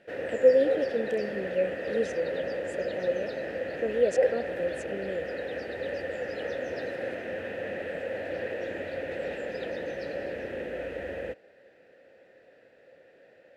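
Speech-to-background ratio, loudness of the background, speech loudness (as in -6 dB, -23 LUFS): 4.0 dB, -33.5 LUFS, -29.5 LUFS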